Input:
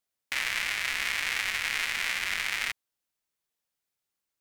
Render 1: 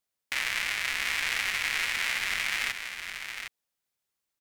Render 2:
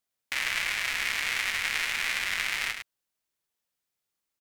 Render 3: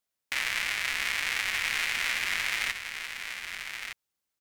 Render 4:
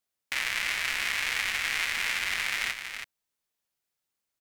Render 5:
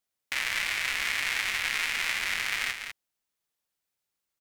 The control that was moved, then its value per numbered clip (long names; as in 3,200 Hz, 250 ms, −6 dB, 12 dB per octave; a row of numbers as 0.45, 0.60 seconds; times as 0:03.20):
single-tap delay, delay time: 761, 104, 1,211, 325, 198 milliseconds